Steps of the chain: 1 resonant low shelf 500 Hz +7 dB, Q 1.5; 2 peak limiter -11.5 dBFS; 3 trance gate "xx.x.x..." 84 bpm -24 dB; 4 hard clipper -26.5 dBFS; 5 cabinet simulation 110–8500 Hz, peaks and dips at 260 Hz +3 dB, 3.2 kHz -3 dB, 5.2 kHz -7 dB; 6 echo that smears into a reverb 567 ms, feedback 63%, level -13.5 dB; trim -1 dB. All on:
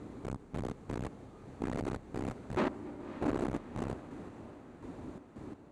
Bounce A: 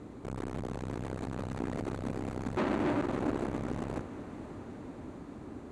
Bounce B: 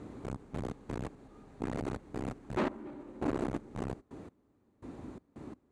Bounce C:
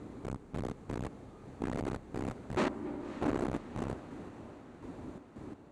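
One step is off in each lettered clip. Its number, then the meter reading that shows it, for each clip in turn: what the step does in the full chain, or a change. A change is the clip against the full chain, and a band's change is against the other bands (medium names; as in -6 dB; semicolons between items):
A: 3, crest factor change -2.5 dB; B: 6, echo-to-direct -11.5 dB to none; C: 2, 4 kHz band +2.0 dB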